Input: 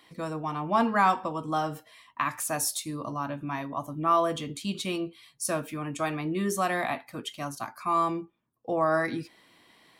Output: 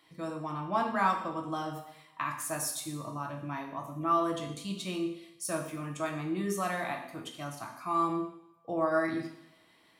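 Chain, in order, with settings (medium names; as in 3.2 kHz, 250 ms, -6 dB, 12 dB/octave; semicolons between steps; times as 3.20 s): two-slope reverb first 0.75 s, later 1.9 s, from -24 dB, DRR 2 dB; trim -7 dB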